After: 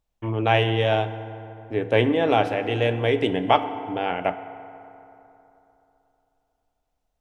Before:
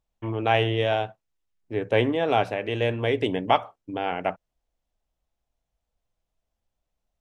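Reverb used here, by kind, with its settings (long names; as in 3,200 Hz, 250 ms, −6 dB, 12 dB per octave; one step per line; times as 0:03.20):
feedback delay network reverb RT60 3.2 s, high-frequency decay 0.5×, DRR 10.5 dB
level +2 dB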